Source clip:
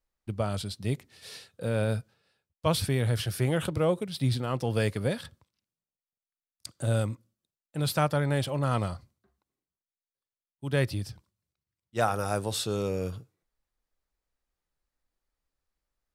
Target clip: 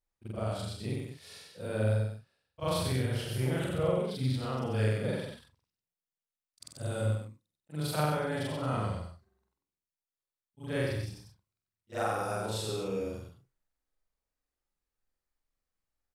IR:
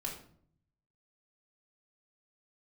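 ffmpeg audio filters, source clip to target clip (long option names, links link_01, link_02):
-af "afftfilt=real='re':imag='-im':win_size=4096:overlap=0.75,aecho=1:1:82|93|188:0.335|0.631|0.335,adynamicequalizer=threshold=0.00316:dfrequency=5200:dqfactor=0.7:tfrequency=5200:tqfactor=0.7:attack=5:release=100:ratio=0.375:range=2:mode=cutabove:tftype=highshelf,volume=-1.5dB"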